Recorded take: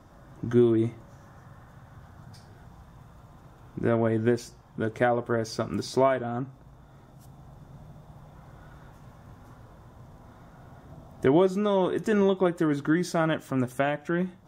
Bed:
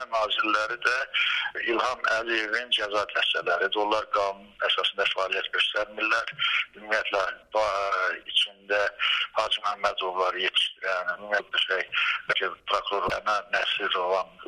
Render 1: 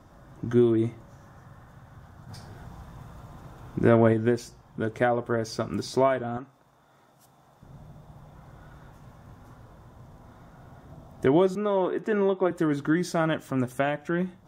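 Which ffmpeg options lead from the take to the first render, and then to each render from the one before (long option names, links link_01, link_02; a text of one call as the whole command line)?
ffmpeg -i in.wav -filter_complex "[0:a]asplit=3[link_01][link_02][link_03];[link_01]afade=type=out:start_time=2.28:duration=0.02[link_04];[link_02]acontrast=39,afade=type=in:start_time=2.28:duration=0.02,afade=type=out:start_time=4.12:duration=0.02[link_05];[link_03]afade=type=in:start_time=4.12:duration=0.02[link_06];[link_04][link_05][link_06]amix=inputs=3:normalize=0,asettb=1/sr,asplit=3[link_07][link_08][link_09];[link_07]atrim=end=6.374[link_10];[link_08]atrim=start=6.37:end=7.63,asetpts=PTS-STARTPTS,afade=type=in:duration=0.004:curve=qsin,afade=type=out:start_time=1.256:duration=0.004:curve=qsin,highpass=frequency=650:poles=1[link_11];[link_09]atrim=start=7.626[link_12];[link_10][link_11]acrossfade=duration=0.004:curve1=hsin:curve2=qsin[link_13];[link_13][link_12]acrossfade=duration=0.004:curve1=qsin:curve2=hsin,asettb=1/sr,asplit=3[link_14][link_15][link_16];[link_14]atrim=end=11.554[link_17];[link_15]atrim=start=11.55:end=12.51,asetpts=PTS-STARTPTS,afade=type=in:duration=0.004:curve=qsin,afade=type=out:start_time=0.956:duration=0.004:curve=qsin,acrossover=split=200 2900:gain=0.178 1 0.2[link_18][link_19][link_20];[link_18][link_19][link_20]amix=inputs=3:normalize=0[link_21];[link_16]atrim=start=12.506[link_22];[link_17][link_21]acrossfade=duration=0.004:curve1=hsin:curve2=qsin[link_23];[link_23][link_22]acrossfade=duration=0.004:curve1=qsin:curve2=hsin" out.wav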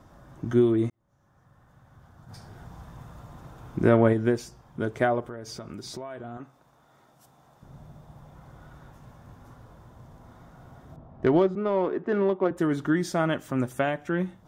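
ffmpeg -i in.wav -filter_complex "[0:a]asettb=1/sr,asplit=3[link_01][link_02][link_03];[link_01]atrim=end=5.204[link_04];[link_02]atrim=start=5.2:end=6.4,asetpts=PTS-STARTPTS,afade=type=in:duration=0.004:curve=qsin,afade=type=out:start_time=1.196:duration=0.004:curve=qsin,acompressor=threshold=-35dB:ratio=6:attack=3.2:release=140:knee=1:detection=peak[link_05];[link_03]atrim=start=6.396[link_06];[link_04][link_05]acrossfade=duration=0.004:curve1=hsin:curve2=qsin[link_07];[link_07][link_06]acrossfade=duration=0.004:curve1=qsin:curve2=hsin,asettb=1/sr,asplit=3[link_08][link_09][link_10];[link_08]atrim=end=10.964[link_11];[link_09]atrim=start=10.96:end=12.57,asetpts=PTS-STARTPTS,afade=type=in:duration=0.004:curve=qsin,afade=type=out:start_time=1.606:duration=0.004:curve=qsin,adynamicsmooth=sensitivity=1.5:basefreq=1800[link_12];[link_10]atrim=start=12.566[link_13];[link_11][link_12]acrossfade=duration=0.004:curve1=hsin:curve2=qsin[link_14];[link_14][link_13]acrossfade=duration=0.004:curve1=qsin:curve2=hsin,asplit=2[link_15][link_16];[link_15]atrim=end=0.9,asetpts=PTS-STARTPTS,afade=type=out:start_time=0.896:duration=0.004:curve=hsin[link_17];[link_16]atrim=start=0.9,asetpts=PTS-STARTPTS,afade=type=in:duration=1.96[link_18];[link_17][link_18]concat=n=2:v=0:a=1" out.wav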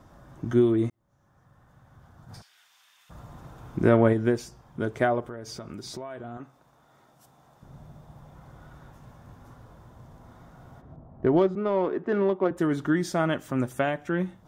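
ffmpeg -i in.wav -filter_complex "[0:a]asplit=3[link_01][link_02][link_03];[link_01]afade=type=out:start_time=2.41:duration=0.02[link_04];[link_02]highpass=frequency=2700:width_type=q:width=1.9,afade=type=in:start_time=2.41:duration=0.02,afade=type=out:start_time=3.09:duration=0.02[link_05];[link_03]afade=type=in:start_time=3.09:duration=0.02[link_06];[link_04][link_05][link_06]amix=inputs=3:normalize=0,asplit=3[link_07][link_08][link_09];[link_07]afade=type=out:start_time=10.8:duration=0.02[link_10];[link_08]lowpass=frequency=1000:poles=1,afade=type=in:start_time=10.8:duration=0.02,afade=type=out:start_time=11.36:duration=0.02[link_11];[link_09]afade=type=in:start_time=11.36:duration=0.02[link_12];[link_10][link_11][link_12]amix=inputs=3:normalize=0" out.wav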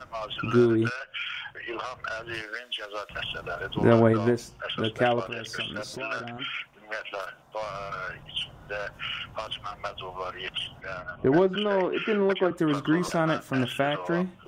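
ffmpeg -i in.wav -i bed.wav -filter_complex "[1:a]volume=-9dB[link_01];[0:a][link_01]amix=inputs=2:normalize=0" out.wav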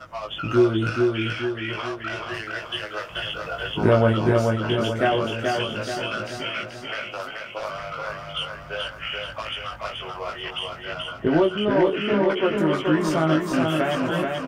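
ffmpeg -i in.wav -filter_complex "[0:a]asplit=2[link_01][link_02];[link_02]adelay=19,volume=-2.5dB[link_03];[link_01][link_03]amix=inputs=2:normalize=0,aecho=1:1:431|862|1293|1724|2155|2586:0.668|0.327|0.16|0.0786|0.0385|0.0189" out.wav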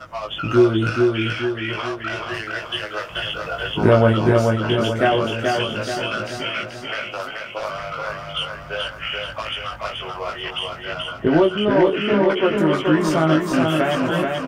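ffmpeg -i in.wav -af "volume=3.5dB" out.wav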